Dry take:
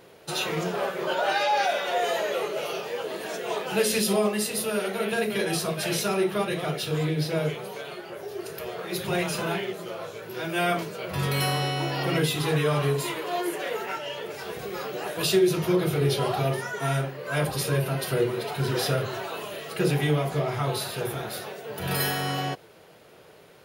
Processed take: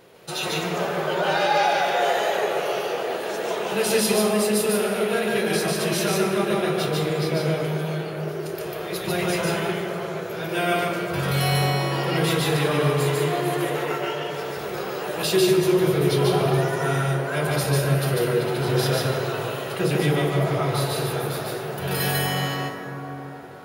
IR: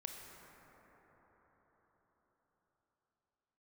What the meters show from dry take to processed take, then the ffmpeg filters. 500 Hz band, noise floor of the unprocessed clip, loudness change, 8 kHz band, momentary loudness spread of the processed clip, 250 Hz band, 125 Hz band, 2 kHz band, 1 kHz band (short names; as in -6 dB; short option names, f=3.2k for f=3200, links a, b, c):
+4.5 dB, -51 dBFS, +4.0 dB, +3.0 dB, 9 LU, +4.5 dB, +4.5 dB, +3.5 dB, +4.0 dB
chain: -filter_complex "[0:a]asplit=2[a][b];[1:a]atrim=start_sample=2205,adelay=146[c];[b][c]afir=irnorm=-1:irlink=0,volume=4dB[d];[a][d]amix=inputs=2:normalize=0"